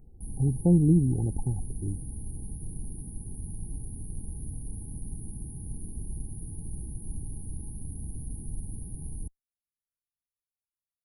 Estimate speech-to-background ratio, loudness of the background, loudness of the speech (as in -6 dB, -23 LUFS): 14.5 dB, -40.5 LUFS, -26.0 LUFS